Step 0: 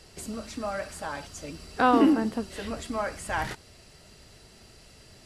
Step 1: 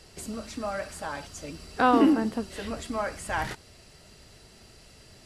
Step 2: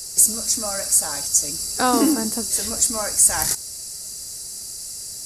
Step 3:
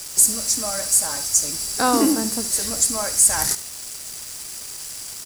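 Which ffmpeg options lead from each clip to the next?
-af anull
-af "aexciter=amount=11.8:drive=8.6:freq=4900,volume=1.19"
-af "acrusher=bits=4:mix=0:aa=0.5,aecho=1:1:72:0.168"

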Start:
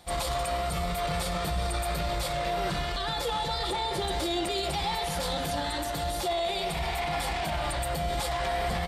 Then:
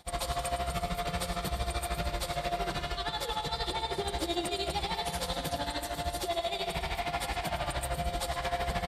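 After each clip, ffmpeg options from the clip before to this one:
-af "tremolo=f=13:d=0.87,aecho=1:1:107|214|321|428|535|642|749:0.282|0.169|0.101|0.0609|0.0365|0.0219|0.0131"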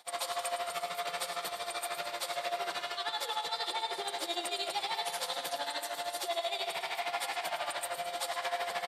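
-af "highpass=610"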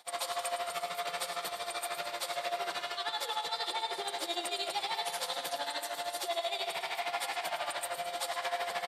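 -af anull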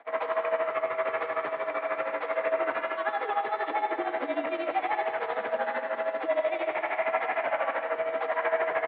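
-af "highpass=f=240:t=q:w=0.5412,highpass=f=240:t=q:w=1.307,lowpass=f=2300:t=q:w=0.5176,lowpass=f=2300:t=q:w=0.7071,lowpass=f=2300:t=q:w=1.932,afreqshift=-51,volume=2.66"

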